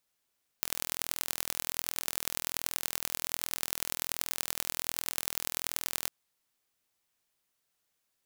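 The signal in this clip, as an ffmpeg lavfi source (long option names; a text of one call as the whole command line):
ffmpeg -f lavfi -i "aevalsrc='0.794*eq(mod(n,1068),0)*(0.5+0.5*eq(mod(n,4272),0))':duration=5.45:sample_rate=44100" out.wav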